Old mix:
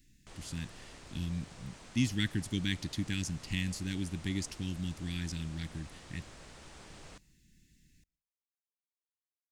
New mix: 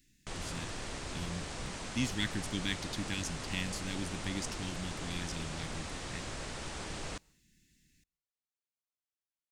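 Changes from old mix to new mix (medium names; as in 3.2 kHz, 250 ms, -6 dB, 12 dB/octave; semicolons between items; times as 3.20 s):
speech: add bass shelf 220 Hz -7.5 dB; background +11.0 dB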